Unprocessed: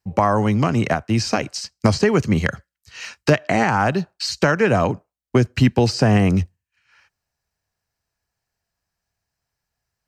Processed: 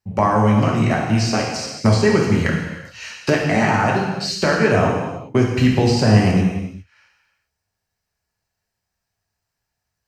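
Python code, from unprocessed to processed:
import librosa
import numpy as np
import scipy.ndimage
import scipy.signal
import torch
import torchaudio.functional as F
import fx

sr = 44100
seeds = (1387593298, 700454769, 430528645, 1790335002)

y = fx.rev_gated(x, sr, seeds[0], gate_ms=440, shape='falling', drr_db=-2.5)
y = y * 10.0 ** (-3.0 / 20.0)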